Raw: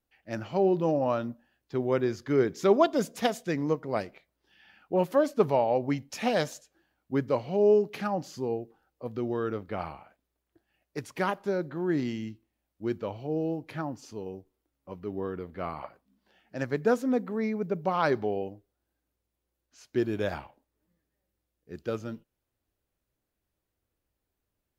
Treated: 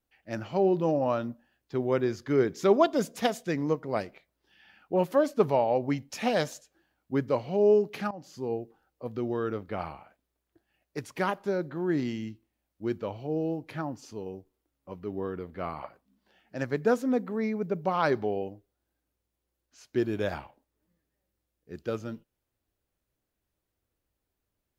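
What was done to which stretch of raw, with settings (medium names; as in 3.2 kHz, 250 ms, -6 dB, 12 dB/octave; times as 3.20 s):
8.11–8.55 s: fade in linear, from -17.5 dB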